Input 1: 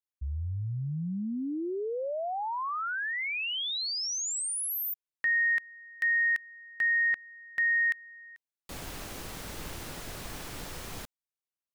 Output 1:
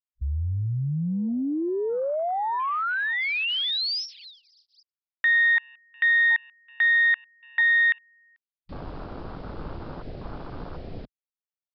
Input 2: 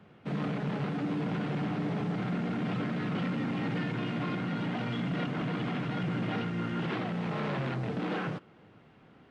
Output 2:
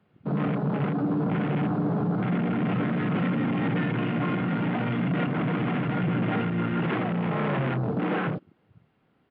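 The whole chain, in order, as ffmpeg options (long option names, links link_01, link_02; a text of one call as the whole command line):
ffmpeg -i in.wav -af "afwtdn=0.00891,aresample=11025,aresample=44100,volume=6.5dB" out.wav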